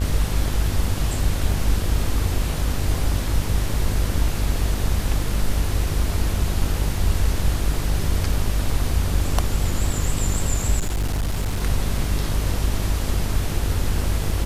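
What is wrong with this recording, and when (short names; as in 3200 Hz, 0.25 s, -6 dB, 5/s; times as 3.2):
buzz 50 Hz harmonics 30 -25 dBFS
10.78–11.62 clipped -19 dBFS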